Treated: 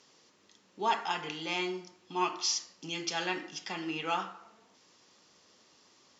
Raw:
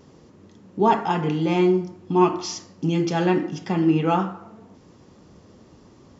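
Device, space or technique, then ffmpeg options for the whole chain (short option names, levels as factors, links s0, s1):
piezo pickup straight into a mixer: -af "lowpass=5100,aderivative,volume=2.51"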